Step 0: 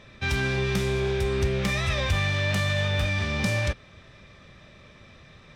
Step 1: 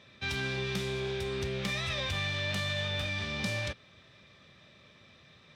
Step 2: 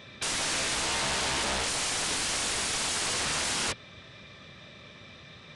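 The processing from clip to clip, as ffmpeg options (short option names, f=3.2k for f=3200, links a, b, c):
-af "highpass=96,equalizer=f=3.7k:t=o:w=1:g=6,volume=-8dB"
-af "aeval=exprs='(mod(44.7*val(0)+1,2)-1)/44.7':c=same,aresample=22050,aresample=44100,volume=9dB"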